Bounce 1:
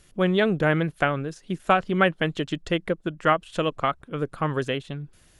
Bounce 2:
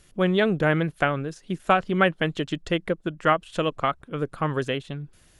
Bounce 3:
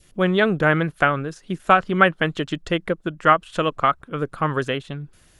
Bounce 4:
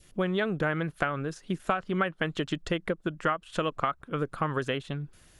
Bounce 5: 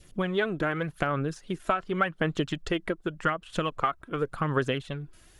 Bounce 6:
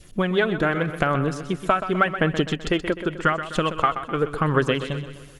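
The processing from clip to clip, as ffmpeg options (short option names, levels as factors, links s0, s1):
-af anull
-af "adynamicequalizer=threshold=0.0178:dfrequency=1300:dqfactor=1.6:tfrequency=1300:tqfactor=1.6:attack=5:release=100:ratio=0.375:range=3:mode=boostabove:tftype=bell,volume=1.26"
-af "acompressor=threshold=0.0794:ratio=6,volume=0.75"
-af "aphaser=in_gain=1:out_gain=1:delay=3.1:decay=0.4:speed=0.87:type=sinusoidal"
-af "aecho=1:1:127|254|381|508|635|762:0.282|0.147|0.0762|0.0396|0.0206|0.0107,volume=2"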